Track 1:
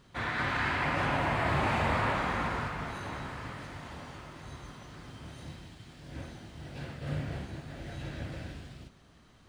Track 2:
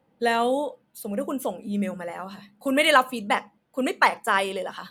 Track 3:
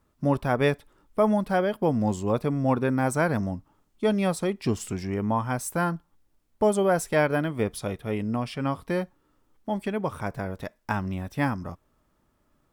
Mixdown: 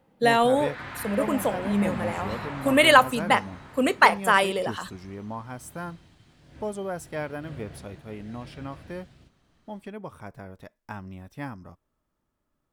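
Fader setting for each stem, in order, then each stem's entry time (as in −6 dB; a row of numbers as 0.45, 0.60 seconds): −7.0, +2.5, −10.0 decibels; 0.40, 0.00, 0.00 seconds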